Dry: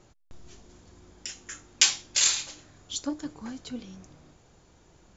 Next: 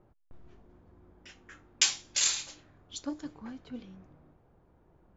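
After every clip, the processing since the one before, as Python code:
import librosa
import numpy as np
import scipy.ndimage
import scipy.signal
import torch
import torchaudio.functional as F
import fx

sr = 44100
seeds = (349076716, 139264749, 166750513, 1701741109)

y = fx.env_lowpass(x, sr, base_hz=1100.0, full_db=-26.0)
y = y * librosa.db_to_amplitude(-4.5)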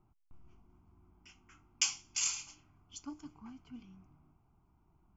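y = fx.fixed_phaser(x, sr, hz=2600.0, stages=8)
y = y * librosa.db_to_amplitude(-4.5)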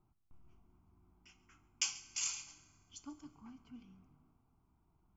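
y = x + 10.0 ** (-20.0 / 20.0) * np.pad(x, (int(139 * sr / 1000.0), 0))[:len(x)]
y = fx.rev_fdn(y, sr, rt60_s=2.6, lf_ratio=1.0, hf_ratio=0.5, size_ms=13.0, drr_db=13.0)
y = y * librosa.db_to_amplitude(-4.5)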